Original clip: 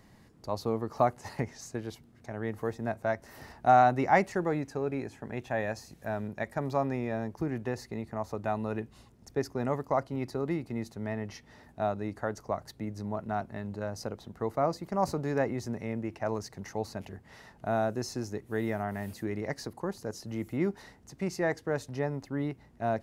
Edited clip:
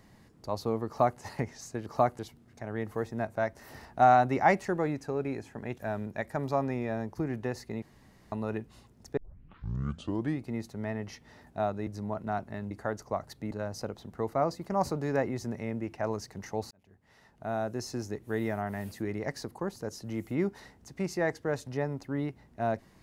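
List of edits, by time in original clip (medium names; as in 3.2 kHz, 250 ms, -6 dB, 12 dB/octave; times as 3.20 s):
0.87–1.20 s: copy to 1.86 s
5.45–6.00 s: delete
8.04–8.54 s: room tone
9.39 s: tape start 1.26 s
12.09–12.89 s: move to 13.73 s
16.93–18.24 s: fade in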